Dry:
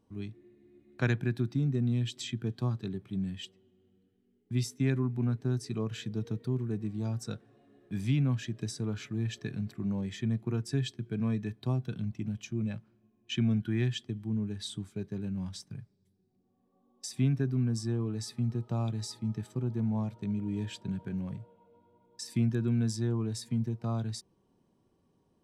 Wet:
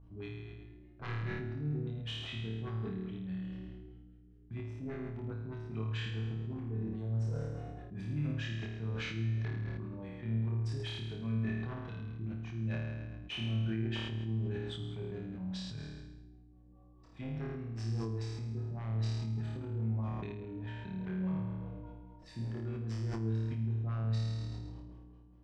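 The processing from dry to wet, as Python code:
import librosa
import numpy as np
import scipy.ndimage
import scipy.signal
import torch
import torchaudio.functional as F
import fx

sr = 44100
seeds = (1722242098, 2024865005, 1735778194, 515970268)

p1 = fx.over_compress(x, sr, threshold_db=-36.0, ratio=-0.5)
p2 = x + (p1 * librosa.db_to_amplitude(-1.0))
p3 = fx.add_hum(p2, sr, base_hz=60, snr_db=15)
p4 = fx.peak_eq(p3, sr, hz=220.0, db=-8.5, octaves=1.9)
p5 = 10.0 ** (-26.5 / 20.0) * (np.abs((p4 / 10.0 ** (-26.5 / 20.0) + 3.0) % 4.0 - 2.0) - 1.0)
p6 = fx.filter_lfo_lowpass(p5, sr, shape='sine', hz=4.9, low_hz=330.0, high_hz=3200.0, q=0.93)
p7 = fx.room_flutter(p6, sr, wall_m=4.6, rt60_s=1.0)
p8 = fx.sustainer(p7, sr, db_per_s=25.0)
y = p8 * librosa.db_to_amplitude(-9.0)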